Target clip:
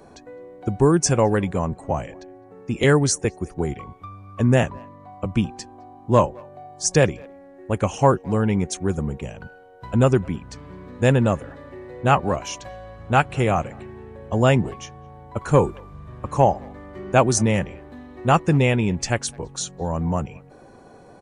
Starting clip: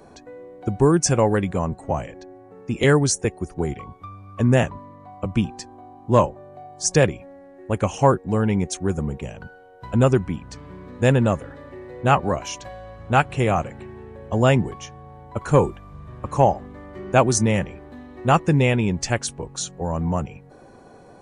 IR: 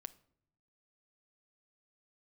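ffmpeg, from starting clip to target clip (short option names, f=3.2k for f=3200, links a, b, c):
-filter_complex "[0:a]asplit=2[a][b];[b]adelay=210,highpass=300,lowpass=3.4k,asoftclip=type=hard:threshold=-10.5dB,volume=-26dB[c];[a][c]amix=inputs=2:normalize=0"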